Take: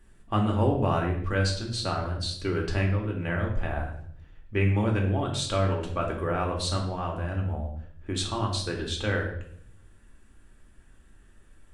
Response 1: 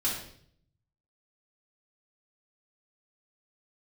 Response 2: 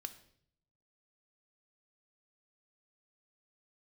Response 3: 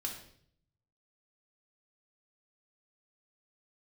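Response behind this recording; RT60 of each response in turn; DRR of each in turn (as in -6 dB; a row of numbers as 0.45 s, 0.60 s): 3; 0.60 s, 0.65 s, 0.60 s; -7.0 dB, 9.0 dB, 0.0 dB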